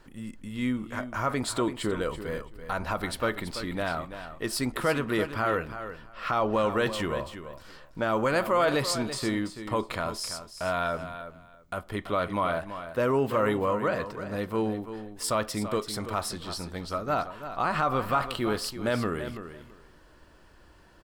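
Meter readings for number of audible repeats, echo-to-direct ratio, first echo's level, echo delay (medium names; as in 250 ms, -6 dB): 2, -11.0 dB, -11.0 dB, 334 ms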